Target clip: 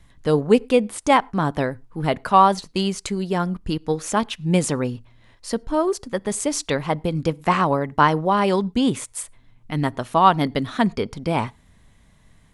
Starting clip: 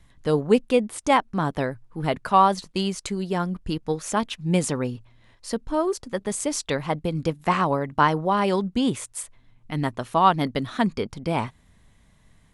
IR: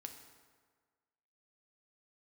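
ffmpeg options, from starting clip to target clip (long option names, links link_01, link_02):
-filter_complex "[0:a]asplit=2[link_01][link_02];[1:a]atrim=start_sample=2205,afade=type=out:start_time=0.17:duration=0.01,atrim=end_sample=7938,highshelf=frequency=4500:gain=-7[link_03];[link_02][link_03]afir=irnorm=-1:irlink=0,volume=-13dB[link_04];[link_01][link_04]amix=inputs=2:normalize=0,volume=2dB"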